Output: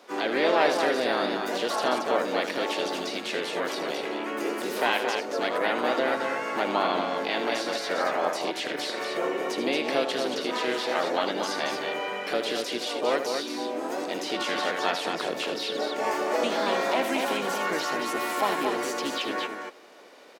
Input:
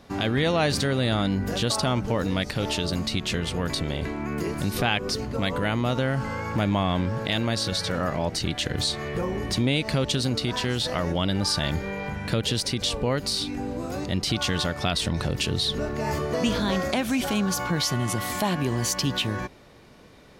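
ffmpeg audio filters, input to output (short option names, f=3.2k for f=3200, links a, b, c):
-filter_complex "[0:a]highpass=f=320:w=0.5412,highpass=f=320:w=1.3066,highshelf=f=4.3k:g=-3,asplit=3[a][b][c];[b]asetrate=35002,aresample=44100,atempo=1.25992,volume=-16dB[d];[c]asetrate=55563,aresample=44100,atempo=0.793701,volume=-4dB[e];[a][d][e]amix=inputs=3:normalize=0,acrossover=split=2800[f][g];[g]acompressor=threshold=-37dB:ratio=4:attack=1:release=60[h];[f][h]amix=inputs=2:normalize=0,asplit=2[i][j];[j]aecho=0:1:78.72|227.4:0.355|0.562[k];[i][k]amix=inputs=2:normalize=0"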